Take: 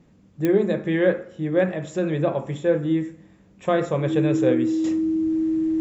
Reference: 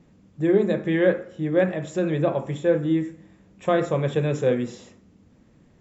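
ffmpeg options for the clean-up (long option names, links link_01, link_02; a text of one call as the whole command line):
ffmpeg -i in.wav -af "adeclick=threshold=4,bandreject=frequency=320:width=30,asetnsamples=nb_out_samples=441:pad=0,asendcmd='4.84 volume volume -12dB',volume=0dB" out.wav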